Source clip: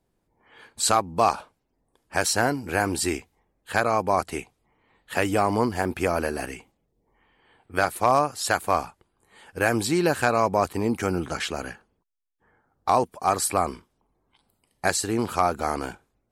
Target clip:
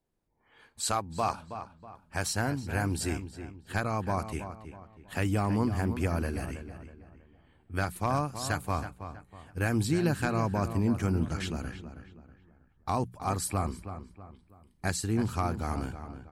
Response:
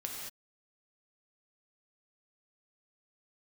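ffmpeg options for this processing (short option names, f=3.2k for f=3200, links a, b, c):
-filter_complex "[0:a]bandreject=f=60:t=h:w=6,bandreject=f=120:t=h:w=6,bandreject=f=180:t=h:w=6,asplit=2[a][b];[b]adelay=322,lowpass=f=2.5k:p=1,volume=-10dB,asplit=2[c][d];[d]adelay=322,lowpass=f=2.5k:p=1,volume=0.39,asplit=2[e][f];[f]adelay=322,lowpass=f=2.5k:p=1,volume=0.39,asplit=2[g][h];[h]adelay=322,lowpass=f=2.5k:p=1,volume=0.39[i];[a][c][e][g][i]amix=inputs=5:normalize=0,asubboost=boost=5.5:cutoff=210,volume=-8.5dB"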